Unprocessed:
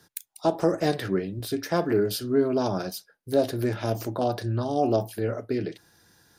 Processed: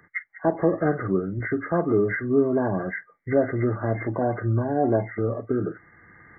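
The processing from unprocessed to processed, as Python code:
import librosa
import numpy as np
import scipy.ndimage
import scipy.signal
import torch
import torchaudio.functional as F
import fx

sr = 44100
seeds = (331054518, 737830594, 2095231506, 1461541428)

y = fx.freq_compress(x, sr, knee_hz=1100.0, ratio=4.0)
y = fx.recorder_agc(y, sr, target_db=-17.5, rise_db_per_s=9.1, max_gain_db=30)
y = fx.peak_eq(y, sr, hz=1800.0, db=-5.5, octaves=2.7)
y = y * 10.0 ** (3.0 / 20.0)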